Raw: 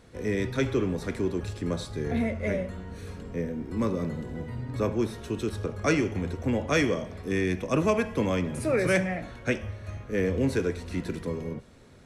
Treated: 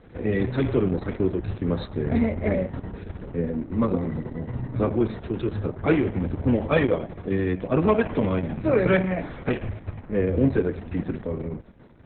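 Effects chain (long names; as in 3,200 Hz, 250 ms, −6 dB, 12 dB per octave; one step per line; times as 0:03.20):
head-to-tape spacing loss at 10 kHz 26 dB, from 0:07.88 at 10 kHz 20 dB, from 0:09.99 at 10 kHz 34 dB
level +6.5 dB
Opus 6 kbit/s 48,000 Hz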